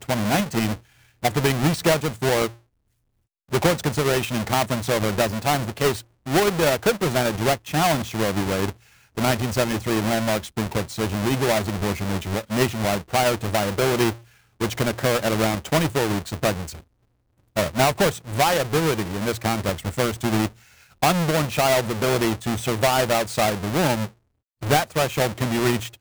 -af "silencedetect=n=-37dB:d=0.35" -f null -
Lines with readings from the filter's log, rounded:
silence_start: 0.75
silence_end: 1.23 | silence_duration: 0.48
silence_start: 2.49
silence_end: 3.52 | silence_duration: 1.03
silence_start: 8.72
silence_end: 9.17 | silence_duration: 0.45
silence_start: 14.15
silence_end: 14.60 | silence_duration: 0.45
silence_start: 16.79
silence_end: 17.56 | silence_duration: 0.77
silence_start: 20.48
silence_end: 21.02 | silence_duration: 0.54
silence_start: 24.08
silence_end: 24.63 | silence_duration: 0.55